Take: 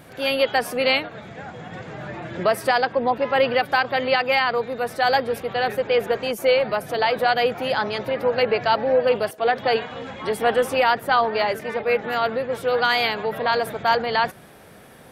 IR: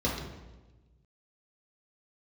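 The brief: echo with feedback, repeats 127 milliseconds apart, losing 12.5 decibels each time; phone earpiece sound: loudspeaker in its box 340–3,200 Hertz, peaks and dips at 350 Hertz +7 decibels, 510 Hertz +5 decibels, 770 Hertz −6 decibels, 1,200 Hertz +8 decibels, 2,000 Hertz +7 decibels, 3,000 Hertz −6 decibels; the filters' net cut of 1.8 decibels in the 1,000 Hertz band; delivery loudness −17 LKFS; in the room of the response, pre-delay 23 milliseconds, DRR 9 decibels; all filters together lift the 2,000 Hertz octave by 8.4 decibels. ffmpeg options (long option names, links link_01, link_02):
-filter_complex "[0:a]equalizer=frequency=1000:width_type=o:gain=-5.5,equalizer=frequency=2000:width_type=o:gain=7.5,aecho=1:1:127|254|381:0.237|0.0569|0.0137,asplit=2[link_01][link_02];[1:a]atrim=start_sample=2205,adelay=23[link_03];[link_02][link_03]afir=irnorm=-1:irlink=0,volume=-18.5dB[link_04];[link_01][link_04]amix=inputs=2:normalize=0,highpass=340,equalizer=frequency=350:width_type=q:width=4:gain=7,equalizer=frequency=510:width_type=q:width=4:gain=5,equalizer=frequency=770:width_type=q:width=4:gain=-6,equalizer=frequency=1200:width_type=q:width=4:gain=8,equalizer=frequency=2000:width_type=q:width=4:gain=7,equalizer=frequency=3000:width_type=q:width=4:gain=-6,lowpass=frequency=3200:width=0.5412,lowpass=frequency=3200:width=1.3066,volume=-0.5dB"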